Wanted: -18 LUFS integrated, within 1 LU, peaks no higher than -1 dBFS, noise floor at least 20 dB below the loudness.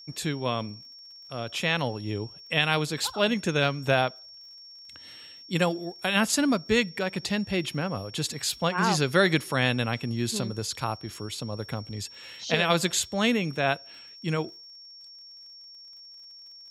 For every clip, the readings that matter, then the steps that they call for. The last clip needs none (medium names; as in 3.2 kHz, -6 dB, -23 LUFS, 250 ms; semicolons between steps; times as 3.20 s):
tick rate 52 per s; steady tone 5.5 kHz; tone level -45 dBFS; loudness -27.0 LUFS; peak level -8.0 dBFS; loudness target -18.0 LUFS
-> de-click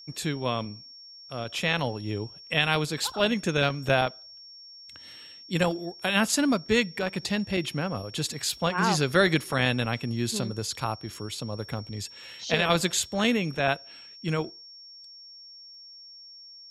tick rate 0.24 per s; steady tone 5.5 kHz; tone level -45 dBFS
-> band-stop 5.5 kHz, Q 30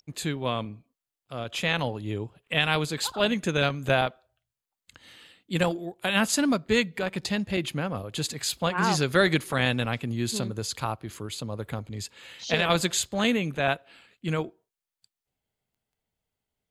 steady tone not found; loudness -27.0 LUFS; peak level -8.0 dBFS; loudness target -18.0 LUFS
-> trim +9 dB; peak limiter -1 dBFS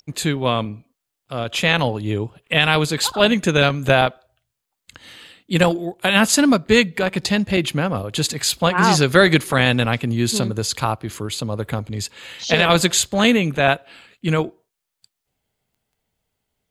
loudness -18.5 LUFS; peak level -1.0 dBFS; noise floor -81 dBFS